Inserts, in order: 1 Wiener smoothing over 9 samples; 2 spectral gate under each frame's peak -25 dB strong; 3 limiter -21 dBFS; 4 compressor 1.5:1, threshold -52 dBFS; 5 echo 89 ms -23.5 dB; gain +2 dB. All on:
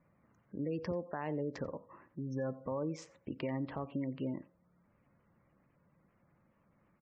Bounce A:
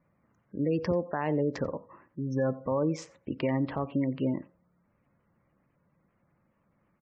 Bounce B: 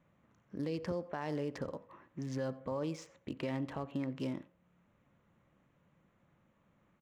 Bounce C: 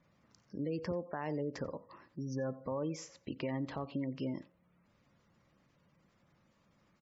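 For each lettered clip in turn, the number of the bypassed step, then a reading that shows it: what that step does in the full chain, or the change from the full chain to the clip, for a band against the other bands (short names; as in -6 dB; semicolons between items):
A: 4, mean gain reduction 7.5 dB; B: 2, 4 kHz band +5.5 dB; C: 1, 4 kHz band +4.0 dB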